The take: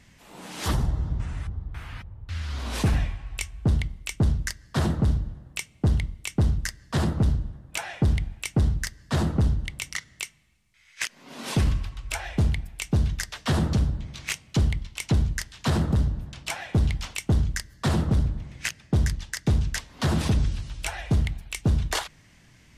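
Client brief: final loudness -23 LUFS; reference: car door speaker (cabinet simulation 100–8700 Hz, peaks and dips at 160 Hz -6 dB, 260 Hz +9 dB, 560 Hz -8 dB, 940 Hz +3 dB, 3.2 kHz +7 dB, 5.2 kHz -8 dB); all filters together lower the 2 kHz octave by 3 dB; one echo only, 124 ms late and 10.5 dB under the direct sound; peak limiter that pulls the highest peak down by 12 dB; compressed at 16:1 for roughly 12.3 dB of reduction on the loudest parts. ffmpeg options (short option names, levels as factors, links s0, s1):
-af "equalizer=f=2000:t=o:g=-4.5,acompressor=threshold=0.0316:ratio=16,alimiter=level_in=1.78:limit=0.0631:level=0:latency=1,volume=0.562,highpass=100,equalizer=f=160:t=q:w=4:g=-6,equalizer=f=260:t=q:w=4:g=9,equalizer=f=560:t=q:w=4:g=-8,equalizer=f=940:t=q:w=4:g=3,equalizer=f=3200:t=q:w=4:g=7,equalizer=f=5200:t=q:w=4:g=-8,lowpass=f=8700:w=0.5412,lowpass=f=8700:w=1.3066,aecho=1:1:124:0.299,volume=8.41"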